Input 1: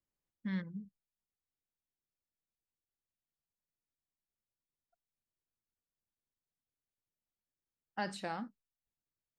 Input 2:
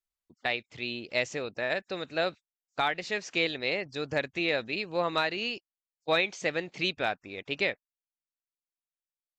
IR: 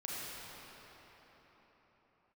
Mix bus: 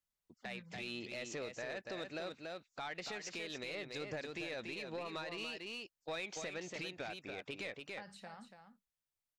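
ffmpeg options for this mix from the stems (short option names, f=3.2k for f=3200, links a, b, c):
-filter_complex "[0:a]equalizer=f=310:w=2.3:g=-12,acrossover=split=120[a][b];[b]acompressor=threshold=-46dB:ratio=3[c];[a][c]amix=inputs=2:normalize=0,volume=-4dB,asplit=2[d][e];[e]volume=-8.5dB[f];[1:a]lowshelf=f=130:g=-5,alimiter=level_in=0.5dB:limit=-24dB:level=0:latency=1:release=111,volume=-0.5dB,asoftclip=type=tanh:threshold=-29dB,volume=-2dB,asplit=2[g][h];[h]volume=-6.5dB[i];[f][i]amix=inputs=2:normalize=0,aecho=0:1:285:1[j];[d][g][j]amix=inputs=3:normalize=0,alimiter=level_in=10.5dB:limit=-24dB:level=0:latency=1:release=165,volume=-10.5dB"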